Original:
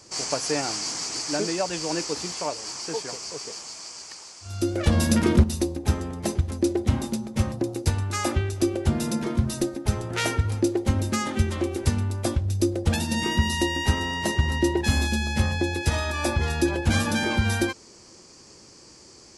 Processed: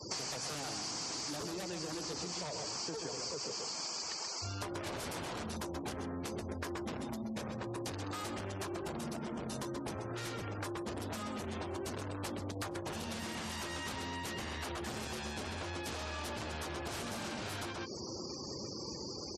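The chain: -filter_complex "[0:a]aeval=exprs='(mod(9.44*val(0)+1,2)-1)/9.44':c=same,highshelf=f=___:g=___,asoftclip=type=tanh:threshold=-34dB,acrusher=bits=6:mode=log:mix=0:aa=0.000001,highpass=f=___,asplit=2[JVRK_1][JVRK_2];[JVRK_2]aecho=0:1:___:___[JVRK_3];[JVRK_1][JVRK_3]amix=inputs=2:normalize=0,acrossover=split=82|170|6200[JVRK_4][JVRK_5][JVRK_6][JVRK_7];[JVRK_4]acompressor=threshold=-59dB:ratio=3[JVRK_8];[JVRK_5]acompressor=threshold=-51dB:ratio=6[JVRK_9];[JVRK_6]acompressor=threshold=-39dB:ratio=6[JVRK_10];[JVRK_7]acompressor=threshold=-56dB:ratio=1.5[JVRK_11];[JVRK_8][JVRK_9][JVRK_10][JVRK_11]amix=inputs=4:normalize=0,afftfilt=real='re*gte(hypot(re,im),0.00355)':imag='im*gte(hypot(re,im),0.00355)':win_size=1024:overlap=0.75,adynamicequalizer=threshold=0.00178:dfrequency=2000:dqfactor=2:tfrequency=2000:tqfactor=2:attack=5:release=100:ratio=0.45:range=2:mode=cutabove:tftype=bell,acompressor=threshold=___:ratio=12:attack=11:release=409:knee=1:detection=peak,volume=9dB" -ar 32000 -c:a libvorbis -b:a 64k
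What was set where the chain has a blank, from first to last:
7100, -8.5, 64, 129, 0.473, -45dB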